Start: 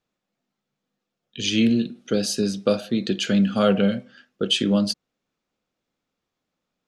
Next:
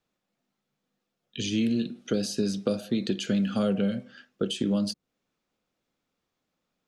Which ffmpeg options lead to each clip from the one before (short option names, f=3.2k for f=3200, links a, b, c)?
-filter_complex "[0:a]acrossover=split=460|6400[a][b][c];[a]acompressor=threshold=-24dB:ratio=4[d];[b]acompressor=threshold=-36dB:ratio=4[e];[c]acompressor=threshold=-42dB:ratio=4[f];[d][e][f]amix=inputs=3:normalize=0"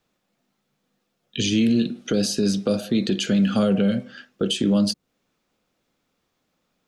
-af "alimiter=limit=-20dB:level=0:latency=1:release=14,volume=8dB"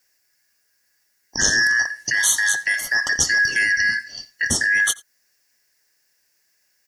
-af "afftfilt=real='real(if(lt(b,272),68*(eq(floor(b/68),0)*2+eq(floor(b/68),1)*0+eq(floor(b/68),2)*3+eq(floor(b/68),3)*1)+mod(b,68),b),0)':imag='imag(if(lt(b,272),68*(eq(floor(b/68),0)*2+eq(floor(b/68),1)*0+eq(floor(b/68),2)*3+eq(floor(b/68),3)*1)+mod(b,68),b),0)':win_size=2048:overlap=0.75,aexciter=amount=6.3:drive=1.4:freq=4.7k,aecho=1:1:87:0.0708"